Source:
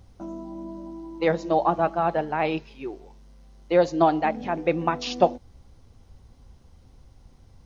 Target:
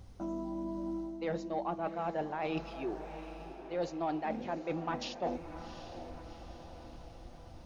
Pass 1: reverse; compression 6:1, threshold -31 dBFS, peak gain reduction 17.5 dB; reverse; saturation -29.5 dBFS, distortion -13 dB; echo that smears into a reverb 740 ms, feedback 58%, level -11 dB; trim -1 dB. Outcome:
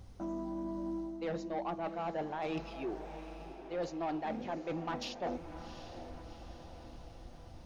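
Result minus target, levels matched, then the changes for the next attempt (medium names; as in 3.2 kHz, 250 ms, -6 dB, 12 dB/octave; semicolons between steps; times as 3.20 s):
saturation: distortion +9 dB
change: saturation -23 dBFS, distortion -22 dB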